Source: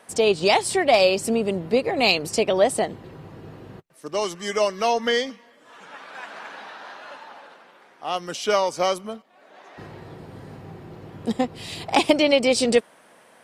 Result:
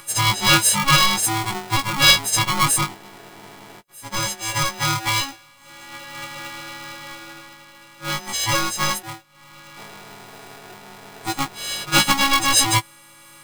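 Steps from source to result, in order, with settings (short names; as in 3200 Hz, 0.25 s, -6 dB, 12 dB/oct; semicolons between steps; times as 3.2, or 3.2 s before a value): frequency quantiser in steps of 4 st; upward compressor, threshold -39 dBFS; polarity switched at an audio rate 550 Hz; gain -1.5 dB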